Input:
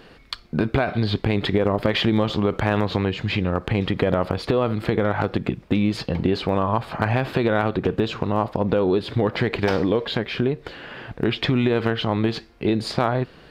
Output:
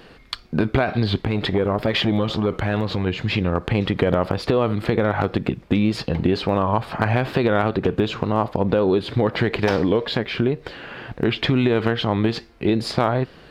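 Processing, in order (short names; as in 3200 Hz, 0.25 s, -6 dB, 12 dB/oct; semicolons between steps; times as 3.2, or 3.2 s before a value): wow and flutter 59 cents; 1.21–3.07 core saturation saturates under 370 Hz; gain +1.5 dB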